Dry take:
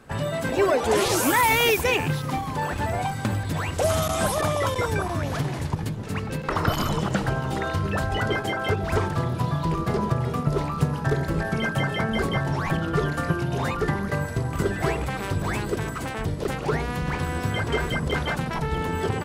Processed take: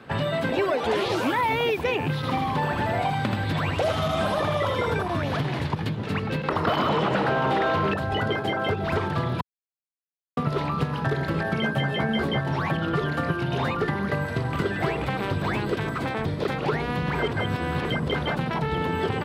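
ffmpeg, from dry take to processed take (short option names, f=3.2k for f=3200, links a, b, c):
-filter_complex "[0:a]asettb=1/sr,asplit=3[a][b][c];[a]atrim=end=2.154[d];[b]atrim=start=2.15:end=5.03,asetpts=PTS-STARTPTS,afade=t=in:d=0.004:c=qsin,afade=t=out:st=2.876:d=0.004:c=qsin,aecho=1:1:80:0.631,atrim=end_sample=127008[e];[c]atrim=start=5.026[f];[d][e]acrossfade=d=0.004:c1=hsin:c2=qsin[g];[g][f]acrossfade=d=0.004:c1=qsin:c2=hsin,asettb=1/sr,asplit=3[h][i][j];[h]atrim=end=6.674[k];[i]atrim=start=6.67:end=7.94,asetpts=PTS-STARTPTS,afade=t=in:d=0.004:c=qsin,afade=t=out:st=1.266:d=0.004:c=qsin,asplit=2[l][m];[m]highpass=f=720:p=1,volume=27dB,asoftclip=type=tanh:threshold=-7.5dB[n];[l][n]amix=inputs=2:normalize=0,lowpass=f=1.4k:p=1,volume=-6dB[o];[j]atrim=start=7.936[p];[k][o]acrossfade=d=0.004:c1=hsin:c2=qsin[q];[q][p]acrossfade=d=0.004:c1=qsin:c2=hsin,asettb=1/sr,asplit=3[r][s][t];[r]atrim=end=11.624[u];[s]atrim=start=11.62:end=12.41,asetpts=PTS-STARTPTS,afade=t=in:d=0.004:c=qsin,afade=t=out:st=0.786:d=0.004:c=qsin,asplit=2[v][w];[w]adelay=14,volume=-3dB[x];[v][x]amix=inputs=2:normalize=0,atrim=end_sample=34839[y];[t]atrim=start=12.406[z];[u][y]acrossfade=d=0.004:c1=hsin:c2=qsin[aa];[aa][z]acrossfade=d=0.004:c1=qsin:c2=hsin,asettb=1/sr,asplit=3[ab][ac][ad];[ab]atrim=end=15.854[ae];[ac]atrim=start=15.85:end=16.58,asetpts=PTS-STARTPTS,afade=t=in:d=0.004:c=qsin,afade=t=out:st=0.726:d=0.004:c=qsin,bandreject=f=2.9k:w=12[af];[ad]atrim=start=16.576[ag];[ae][af]acrossfade=d=0.004:c1=hsin:c2=qsin[ah];[ah][ag]acrossfade=d=0.004:c1=qsin:c2=hsin,asplit=5[ai][aj][ak][al][am];[ai]atrim=end=9.41,asetpts=PTS-STARTPTS,afade=t=out:st=9.406:d=0.004:c=hsin[an];[aj]atrim=start=9.41:end=10.37,asetpts=PTS-STARTPTS,volume=0[ao];[ak]atrim=start=10.37:end=17.152,asetpts=PTS-STARTPTS,afade=t=in:d=0.004:c=hsin[ap];[al]atrim=start=17.148:end=17.852,asetpts=PTS-STARTPTS,areverse[aq];[am]atrim=start=17.848[ar];[an][ao][ap]concat=n=3:v=0:a=1[as];[as][aq]acrossfade=d=0.004:c1=hsin:c2=hsin[at];[at][ar]acrossfade=d=0.004:c1=hsin:c2=hsin,highpass=100,highshelf=f=5.1k:t=q:w=1.5:g=-10.5,acrossover=split=1000|6700[au][av][aw];[au]acompressor=threshold=-28dB:ratio=4[ax];[av]acompressor=threshold=-36dB:ratio=4[ay];[aw]acompressor=threshold=-59dB:ratio=4[az];[ax][ay][az]amix=inputs=3:normalize=0,volume=4.5dB"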